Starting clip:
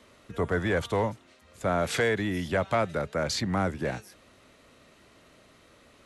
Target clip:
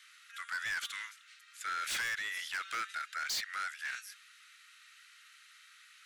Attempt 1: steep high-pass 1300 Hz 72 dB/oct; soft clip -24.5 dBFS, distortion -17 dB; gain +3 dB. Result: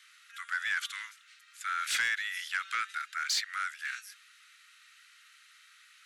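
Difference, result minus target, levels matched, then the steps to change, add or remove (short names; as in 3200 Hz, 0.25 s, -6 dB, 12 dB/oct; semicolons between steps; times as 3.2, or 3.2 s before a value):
soft clip: distortion -10 dB
change: soft clip -35 dBFS, distortion -7 dB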